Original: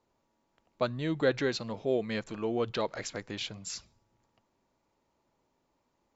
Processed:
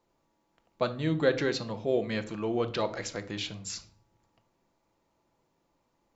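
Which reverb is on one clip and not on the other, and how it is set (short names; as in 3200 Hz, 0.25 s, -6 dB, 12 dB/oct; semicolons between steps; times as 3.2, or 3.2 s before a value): shoebox room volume 580 m³, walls furnished, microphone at 0.76 m; gain +1 dB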